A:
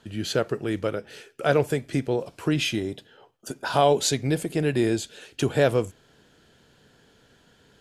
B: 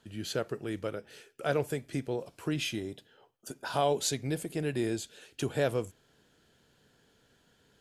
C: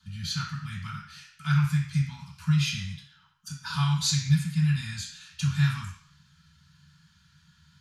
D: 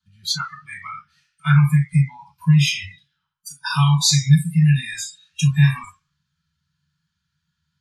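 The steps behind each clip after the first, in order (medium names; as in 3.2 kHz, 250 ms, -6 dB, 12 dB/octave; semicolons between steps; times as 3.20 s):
treble shelf 9.1 kHz +7 dB; trim -8.5 dB
inverse Chebyshev band-stop 310–620 Hz, stop band 60 dB; reverberation RT60 0.55 s, pre-delay 3 ms, DRR -11 dB; trim -5 dB
in parallel at -1 dB: compression, threshold -33 dBFS, peak gain reduction 15.5 dB; on the sum: spectral noise reduction 28 dB; trim +7.5 dB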